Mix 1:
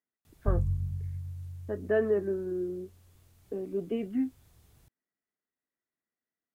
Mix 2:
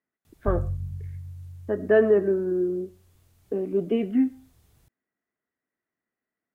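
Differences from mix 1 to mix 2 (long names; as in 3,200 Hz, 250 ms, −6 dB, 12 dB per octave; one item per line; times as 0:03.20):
speech +7.0 dB
reverb: on, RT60 0.30 s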